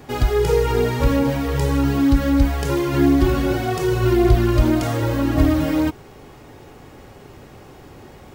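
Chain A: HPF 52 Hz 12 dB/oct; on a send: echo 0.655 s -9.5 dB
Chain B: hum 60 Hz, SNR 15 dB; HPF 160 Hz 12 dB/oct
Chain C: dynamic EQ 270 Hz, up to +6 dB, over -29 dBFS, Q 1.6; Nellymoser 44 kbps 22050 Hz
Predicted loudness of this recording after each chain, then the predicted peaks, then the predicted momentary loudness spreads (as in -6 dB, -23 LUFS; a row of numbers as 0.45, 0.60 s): -18.5, -20.5, -15.5 LUFS; -3.5, -6.5, -2.0 dBFS; 9, 5, 7 LU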